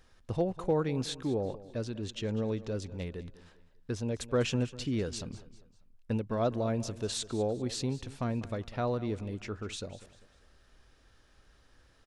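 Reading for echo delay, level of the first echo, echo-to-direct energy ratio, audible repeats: 198 ms, -17.0 dB, -16.5 dB, 3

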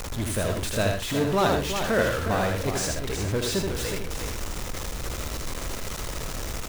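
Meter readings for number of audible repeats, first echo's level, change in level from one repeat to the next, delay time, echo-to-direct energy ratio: 4, -4.0 dB, no regular repeats, 79 ms, -1.5 dB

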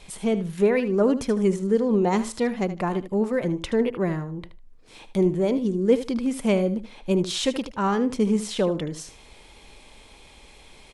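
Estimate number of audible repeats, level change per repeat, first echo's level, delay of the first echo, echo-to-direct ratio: 2, -15.5 dB, -13.0 dB, 76 ms, -13.0 dB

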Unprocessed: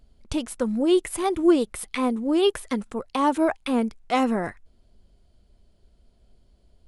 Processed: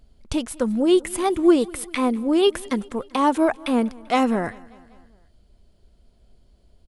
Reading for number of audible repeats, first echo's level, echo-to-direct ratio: 3, -23.5 dB, -21.5 dB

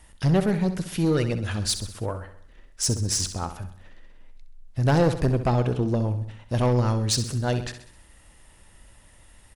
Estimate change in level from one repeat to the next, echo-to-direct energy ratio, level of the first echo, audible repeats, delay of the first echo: -6.0 dB, -9.5 dB, -11.0 dB, 5, 65 ms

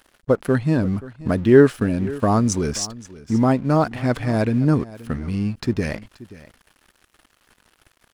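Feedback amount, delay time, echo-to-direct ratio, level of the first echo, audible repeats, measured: no regular repeats, 529 ms, -18.5 dB, -18.5 dB, 1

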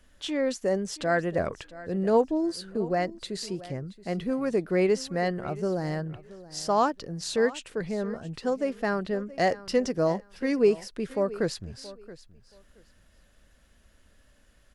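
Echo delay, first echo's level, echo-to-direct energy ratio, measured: 675 ms, -18.0 dB, -18.0 dB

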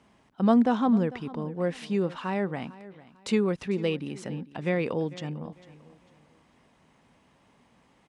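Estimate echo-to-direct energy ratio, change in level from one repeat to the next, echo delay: -18.0 dB, -10.0 dB, 449 ms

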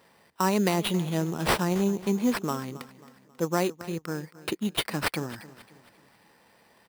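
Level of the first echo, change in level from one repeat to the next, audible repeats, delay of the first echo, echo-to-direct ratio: -17.5 dB, -7.5 dB, 3, 270 ms, -16.5 dB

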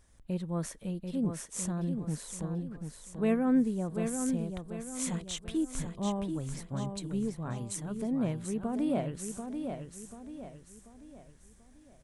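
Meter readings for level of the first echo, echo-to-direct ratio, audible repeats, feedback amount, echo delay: -6.5 dB, -5.5 dB, 4, 41%, 738 ms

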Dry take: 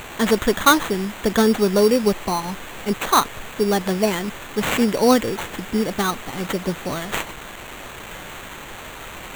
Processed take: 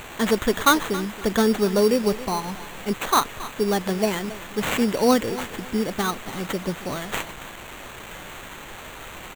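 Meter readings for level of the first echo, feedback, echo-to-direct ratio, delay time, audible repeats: -16.5 dB, 28%, -16.0 dB, 274 ms, 2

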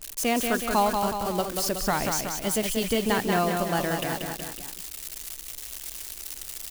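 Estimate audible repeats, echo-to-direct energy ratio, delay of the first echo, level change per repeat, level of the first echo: 3, -3.5 dB, 185 ms, -4.5 dB, -5.0 dB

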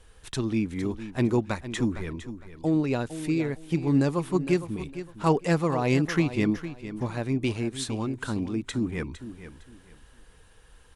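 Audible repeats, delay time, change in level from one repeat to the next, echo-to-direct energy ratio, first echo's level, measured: 2, 458 ms, -12.0 dB, -12.0 dB, -12.5 dB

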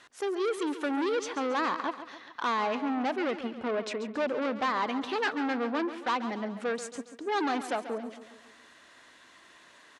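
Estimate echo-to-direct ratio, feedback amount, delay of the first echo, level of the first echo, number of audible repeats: -11.0 dB, 50%, 138 ms, -12.0 dB, 4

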